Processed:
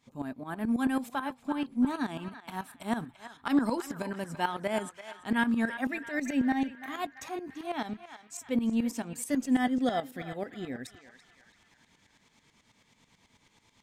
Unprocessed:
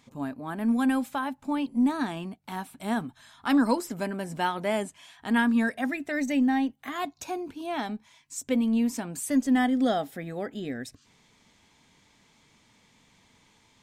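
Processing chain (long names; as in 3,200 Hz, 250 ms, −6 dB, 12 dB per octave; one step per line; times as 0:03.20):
shaped tremolo saw up 9.2 Hz, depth 80%
feedback echo with a band-pass in the loop 337 ms, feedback 55%, band-pass 1,800 Hz, level −9.5 dB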